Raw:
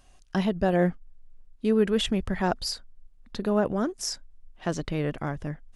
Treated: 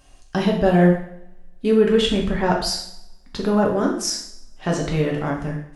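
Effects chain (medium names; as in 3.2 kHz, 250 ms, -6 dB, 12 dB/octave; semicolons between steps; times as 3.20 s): 1.76–2.49 s: treble shelf 9.3 kHz -> 4.8 kHz -10 dB; two-slope reverb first 0.61 s, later 1.6 s, from -25 dB, DRR -1.5 dB; trim +3.5 dB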